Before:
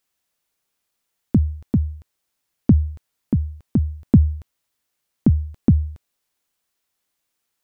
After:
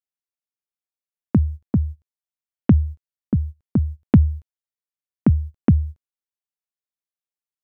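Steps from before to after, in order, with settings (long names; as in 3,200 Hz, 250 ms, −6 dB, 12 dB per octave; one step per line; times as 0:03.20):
noise gate −27 dBFS, range −23 dB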